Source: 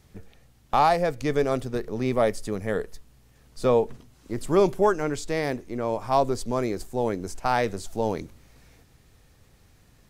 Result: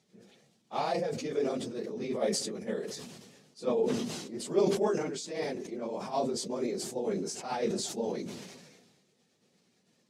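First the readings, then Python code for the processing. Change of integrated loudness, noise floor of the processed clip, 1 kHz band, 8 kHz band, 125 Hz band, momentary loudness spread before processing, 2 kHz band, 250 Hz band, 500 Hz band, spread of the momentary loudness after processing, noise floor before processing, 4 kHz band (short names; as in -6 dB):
-7.0 dB, -72 dBFS, -12.0 dB, +2.5 dB, -11.0 dB, 10 LU, -11.0 dB, -5.0 dB, -6.5 dB, 10 LU, -58 dBFS, 0.0 dB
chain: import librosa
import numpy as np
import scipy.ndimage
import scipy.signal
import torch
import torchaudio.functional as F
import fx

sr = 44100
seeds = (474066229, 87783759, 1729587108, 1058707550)

y = fx.phase_scramble(x, sr, seeds[0], window_ms=50)
y = scipy.signal.sosfilt(scipy.signal.butter(2, 5900.0, 'lowpass', fs=sr, output='sos'), y)
y = fx.peak_eq(y, sr, hz=290.0, db=-10.0, octaves=0.21)
y = y * (1.0 - 0.53 / 2.0 + 0.53 / 2.0 * np.cos(2.0 * np.pi * 8.9 * (np.arange(len(y)) / sr)))
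y = scipy.signal.sosfilt(scipy.signal.butter(4, 210.0, 'highpass', fs=sr, output='sos'), y)
y = fx.peak_eq(y, sr, hz=1300.0, db=-13.0, octaves=2.6)
y = fx.sustainer(y, sr, db_per_s=40.0)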